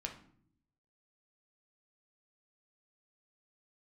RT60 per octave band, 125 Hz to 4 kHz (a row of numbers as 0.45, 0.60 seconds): 1.1, 0.95, 0.70, 0.50, 0.45, 0.40 seconds